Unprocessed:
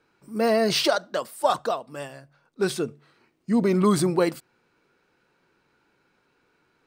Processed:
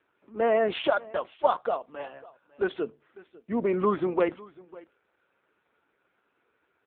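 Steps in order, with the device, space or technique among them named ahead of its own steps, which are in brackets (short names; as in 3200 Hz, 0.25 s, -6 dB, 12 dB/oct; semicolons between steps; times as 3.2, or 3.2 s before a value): satellite phone (BPF 340–3200 Hz; echo 0.549 s -21.5 dB; AMR-NB 5.9 kbps 8000 Hz)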